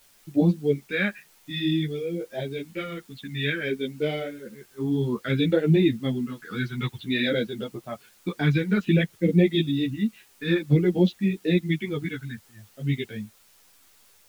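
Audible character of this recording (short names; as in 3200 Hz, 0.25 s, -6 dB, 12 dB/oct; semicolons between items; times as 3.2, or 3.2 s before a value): phasing stages 2, 0.56 Hz, lowest notch 580–1200 Hz; a quantiser's noise floor 10-bit, dither triangular; a shimmering, thickened sound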